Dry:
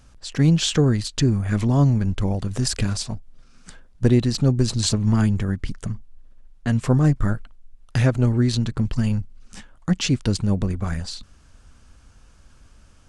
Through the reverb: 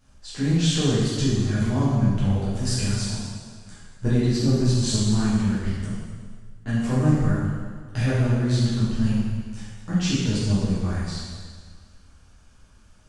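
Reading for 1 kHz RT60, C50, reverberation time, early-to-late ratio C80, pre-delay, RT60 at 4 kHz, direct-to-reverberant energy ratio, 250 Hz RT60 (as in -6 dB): 1.7 s, -2.5 dB, 1.7 s, 0.5 dB, 5 ms, 1.6 s, -10.0 dB, 1.7 s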